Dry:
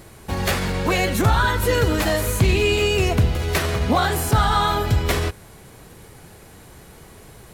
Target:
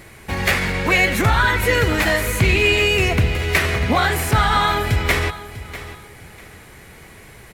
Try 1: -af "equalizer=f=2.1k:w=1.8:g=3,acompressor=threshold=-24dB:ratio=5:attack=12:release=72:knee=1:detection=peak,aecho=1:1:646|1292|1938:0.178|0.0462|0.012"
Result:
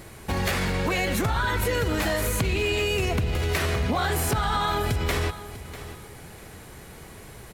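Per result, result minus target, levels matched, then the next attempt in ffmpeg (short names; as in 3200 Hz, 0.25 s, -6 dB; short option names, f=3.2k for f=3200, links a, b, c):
compressor: peak gain reduction +11 dB; 2000 Hz band -3.0 dB
-af "equalizer=f=2.1k:w=1.8:g=3,aecho=1:1:646|1292|1938:0.178|0.0462|0.012"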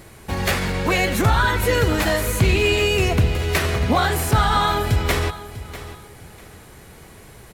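2000 Hz band -3.0 dB
-af "equalizer=f=2.1k:w=1.8:g=10.5,aecho=1:1:646|1292|1938:0.178|0.0462|0.012"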